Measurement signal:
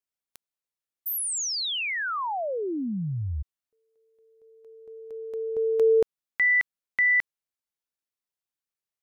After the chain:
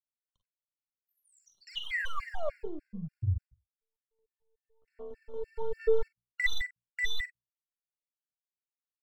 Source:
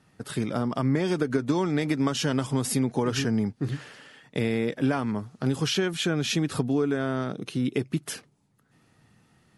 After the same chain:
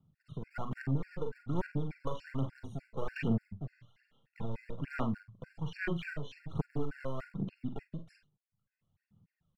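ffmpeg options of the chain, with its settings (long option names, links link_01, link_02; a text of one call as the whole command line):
ffmpeg -i in.wav -filter_complex "[0:a]lowpass=3000,bandreject=frequency=60:width_type=h:width=6,bandreject=frequency=120:width_type=h:width=6,bandreject=frequency=180:width_type=h:width=6,bandreject=frequency=240:width_type=h:width=6,afwtdn=0.0251,lowshelf=frequency=230:width_type=q:width=1.5:gain=7.5,acrossover=split=410|2000[link_01][link_02][link_03];[link_01]acompressor=threshold=-32dB:ratio=5:attack=11:release=813[link_04];[link_02]aeval=exprs='max(val(0),0)':channel_layout=same[link_05];[link_04][link_05][link_03]amix=inputs=3:normalize=0,aphaser=in_gain=1:out_gain=1:delay=2:decay=0.66:speed=1.2:type=sinusoidal,asoftclip=type=tanh:threshold=-13dB,asplit=2[link_06][link_07];[link_07]adelay=43,volume=-12dB[link_08];[link_06][link_08]amix=inputs=2:normalize=0,aecho=1:1:41|52:0.282|0.335,afftfilt=real='re*gt(sin(2*PI*3.4*pts/sr)*(1-2*mod(floor(b*sr/1024/1400),2)),0)':imag='im*gt(sin(2*PI*3.4*pts/sr)*(1-2*mod(floor(b*sr/1024/1400),2)),0)':win_size=1024:overlap=0.75,volume=-4.5dB" out.wav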